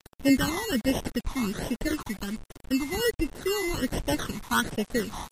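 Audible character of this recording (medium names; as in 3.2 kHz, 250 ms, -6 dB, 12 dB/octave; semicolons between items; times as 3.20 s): aliases and images of a low sample rate 2.4 kHz, jitter 0%; phasing stages 12, 1.3 Hz, lowest notch 490–1400 Hz; a quantiser's noise floor 8-bit, dither none; MP3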